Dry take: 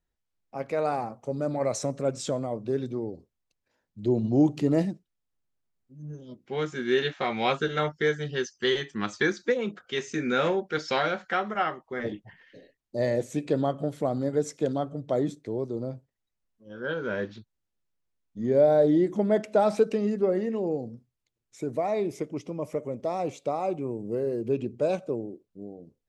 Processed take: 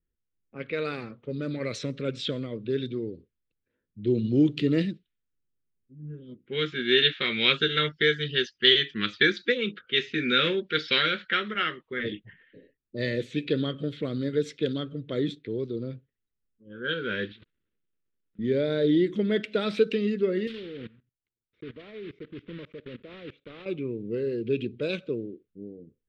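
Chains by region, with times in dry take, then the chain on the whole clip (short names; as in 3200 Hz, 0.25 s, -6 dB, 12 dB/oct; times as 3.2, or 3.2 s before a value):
17.32–18.39 block floating point 3-bit + low shelf 130 Hz -9 dB + negative-ratio compressor -56 dBFS
20.47–23.66 block floating point 3-bit + level quantiser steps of 19 dB
whole clip: low-pass opened by the level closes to 890 Hz, open at -23 dBFS; EQ curve 470 Hz 0 dB, 760 Hz -22 dB, 1400 Hz +2 dB, 3600 Hz +14 dB, 6300 Hz -10 dB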